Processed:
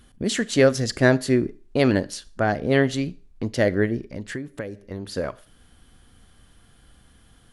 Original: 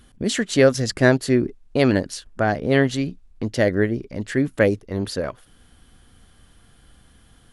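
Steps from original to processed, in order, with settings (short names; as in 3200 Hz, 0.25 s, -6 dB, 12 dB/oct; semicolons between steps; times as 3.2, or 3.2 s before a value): Schroeder reverb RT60 0.39 s, combs from 27 ms, DRR 19 dB; 3.99–5.16 compressor 16:1, threshold -27 dBFS, peak gain reduction 16.5 dB; gain -1.5 dB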